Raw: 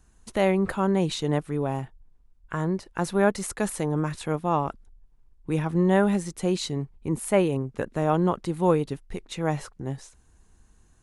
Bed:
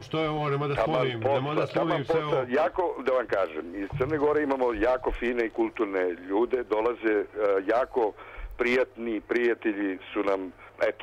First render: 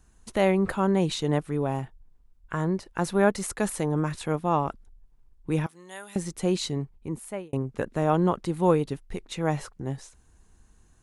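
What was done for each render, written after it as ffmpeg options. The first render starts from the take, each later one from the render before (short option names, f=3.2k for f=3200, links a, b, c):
-filter_complex "[0:a]asettb=1/sr,asplit=3[a][b][c];[a]atrim=end=5.664[d];[b]atrim=start=5.66:end=6.16,asetpts=PTS-STARTPTS,afade=t=in:d=0.004:c=qsin,afade=t=out:st=0.496:d=0.004:c=qsin,aderivative[e];[c]atrim=start=6.156[f];[d][e]acrossfade=d=0.004:c1=hsin:c2=qsin[g];[g][f]acrossfade=d=0.004:c1=qsin:c2=hsin,asplit=2[h][i];[h]atrim=end=7.53,asetpts=PTS-STARTPTS,afade=t=out:st=6.74:d=0.79[j];[i]atrim=start=7.53,asetpts=PTS-STARTPTS,afade=t=in:d=0.004:c=hsin[k];[j][k]concat=n=2:v=0:a=1"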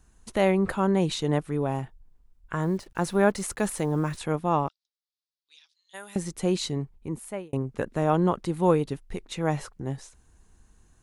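-filter_complex "[0:a]asettb=1/sr,asplit=3[a][b][c];[a]atrim=end=2.624[d];[b]atrim=start=2.62:end=4.17,asetpts=PTS-STARTPTS,afade=t=in:d=0.004:c=qsin,afade=t=out:st=1.546:d=0.004:c=qsin,acrusher=bits=8:mix=0:aa=0.5[e];[c]atrim=start=4.166[f];[d][e]acrossfade=d=0.004:c1=hsin:c2=qsin[g];[g][f]acrossfade=d=0.004:c1=qsin:c2=hsin,asplit=3[h][i][j];[h]afade=t=out:st=4.67:d=0.02[k];[i]asuperpass=centerf=4400:order=4:qfactor=2.4,afade=t=in:st=4.67:d=0.02,afade=t=out:st=5.93:d=0.02[l];[j]afade=t=in:st=5.93:d=0.02[m];[k][l][m]amix=inputs=3:normalize=0"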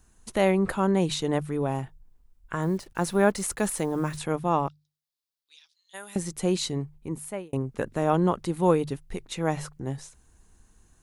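-af "highshelf=f=7.7k:g=5.5,bandreject=f=50:t=h:w=6,bandreject=f=100:t=h:w=6,bandreject=f=150:t=h:w=6"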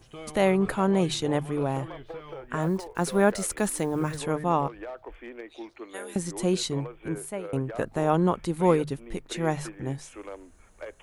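-filter_complex "[1:a]volume=-14.5dB[a];[0:a][a]amix=inputs=2:normalize=0"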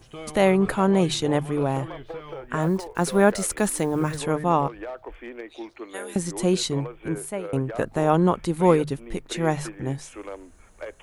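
-af "volume=3.5dB"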